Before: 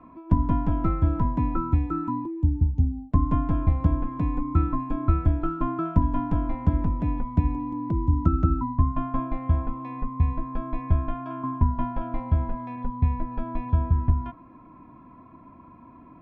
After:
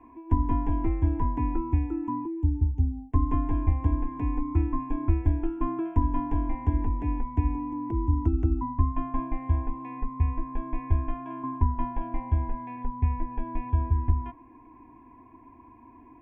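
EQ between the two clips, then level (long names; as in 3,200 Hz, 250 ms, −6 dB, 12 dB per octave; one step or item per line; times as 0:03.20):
phaser with its sweep stopped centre 870 Hz, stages 8
0.0 dB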